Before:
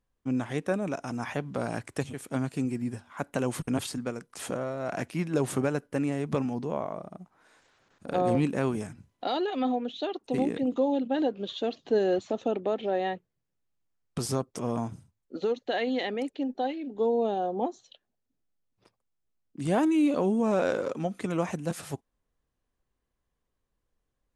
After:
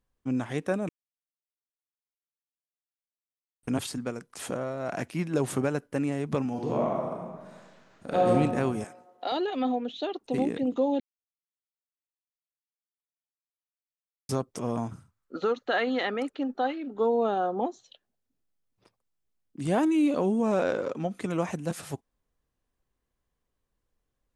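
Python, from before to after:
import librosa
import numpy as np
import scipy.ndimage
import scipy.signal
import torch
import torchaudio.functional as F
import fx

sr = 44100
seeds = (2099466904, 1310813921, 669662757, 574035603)

y = fx.reverb_throw(x, sr, start_s=6.49, length_s=1.82, rt60_s=1.5, drr_db=-2.5)
y = fx.highpass(y, sr, hz=430.0, slope=12, at=(8.84, 9.32))
y = fx.peak_eq(y, sr, hz=1300.0, db=15.0, octaves=0.64, at=(14.91, 17.61))
y = fx.air_absorb(y, sr, metres=56.0, at=(20.63, 21.11))
y = fx.edit(y, sr, fx.silence(start_s=0.89, length_s=2.74),
    fx.silence(start_s=11.0, length_s=3.29), tone=tone)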